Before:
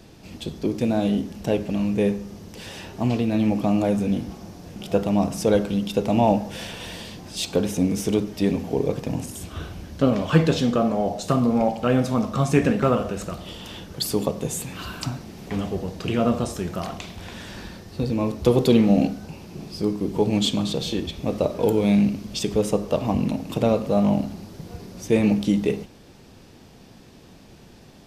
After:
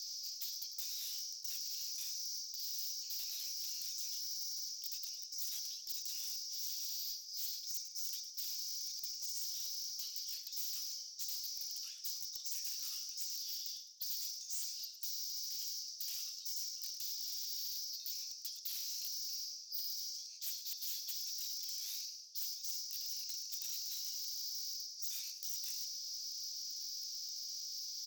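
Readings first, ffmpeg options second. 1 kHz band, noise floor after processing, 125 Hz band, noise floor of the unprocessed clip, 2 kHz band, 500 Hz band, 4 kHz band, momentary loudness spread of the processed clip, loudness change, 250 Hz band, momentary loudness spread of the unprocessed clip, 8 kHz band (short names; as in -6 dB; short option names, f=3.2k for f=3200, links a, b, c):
under -40 dB, -51 dBFS, under -40 dB, -48 dBFS, -28.0 dB, under -40 dB, -5.0 dB, 3 LU, -16.5 dB, under -40 dB, 17 LU, -1.5 dB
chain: -filter_complex "[0:a]asuperpass=centerf=5300:order=4:qfactor=4.1,areverse,acompressor=threshold=-57dB:ratio=10,areverse,aeval=exprs='0.00596*sin(PI/2*5.01*val(0)/0.00596)':c=same,aderivative,asplit=4[a][b][c][d];[b]adelay=106,afreqshift=89,volume=-12.5dB[e];[c]adelay=212,afreqshift=178,volume=-22.4dB[f];[d]adelay=318,afreqshift=267,volume=-32.3dB[g];[a][e][f][g]amix=inputs=4:normalize=0,volume=7dB"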